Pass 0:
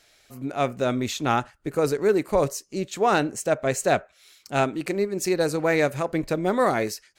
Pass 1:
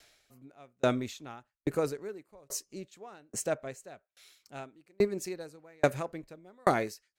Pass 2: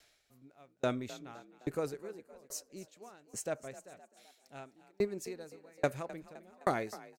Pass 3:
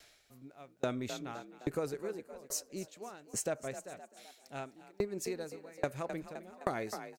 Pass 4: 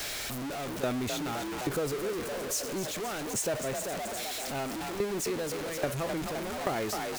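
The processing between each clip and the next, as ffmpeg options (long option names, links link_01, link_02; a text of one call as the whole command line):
ffmpeg -i in.wav -af "aeval=exprs='val(0)*pow(10,-40*if(lt(mod(1.2*n/s,1),2*abs(1.2)/1000),1-mod(1.2*n/s,1)/(2*abs(1.2)/1000),(mod(1.2*n/s,1)-2*abs(1.2)/1000)/(1-2*abs(1.2)/1000))/20)':channel_layout=same" out.wav
ffmpeg -i in.wav -filter_complex "[0:a]asplit=6[link_01][link_02][link_03][link_04][link_05][link_06];[link_02]adelay=258,afreqshift=40,volume=-17dB[link_07];[link_03]adelay=516,afreqshift=80,volume=-22.7dB[link_08];[link_04]adelay=774,afreqshift=120,volume=-28.4dB[link_09];[link_05]adelay=1032,afreqshift=160,volume=-34dB[link_10];[link_06]adelay=1290,afreqshift=200,volume=-39.7dB[link_11];[link_01][link_07][link_08][link_09][link_10][link_11]amix=inputs=6:normalize=0,volume=-5.5dB" out.wav
ffmpeg -i in.wav -af "acompressor=threshold=-37dB:ratio=6,volume=6dB" out.wav
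ffmpeg -i in.wav -af "aeval=exprs='val(0)+0.5*0.0299*sgn(val(0))':channel_layout=same" out.wav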